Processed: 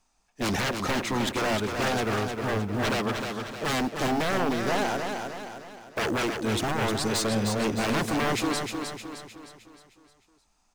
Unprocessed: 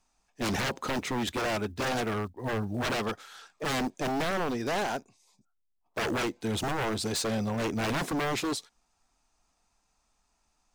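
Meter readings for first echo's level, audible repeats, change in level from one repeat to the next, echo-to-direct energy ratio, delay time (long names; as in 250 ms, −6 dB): −5.5 dB, 5, −6.5 dB, −4.5 dB, 308 ms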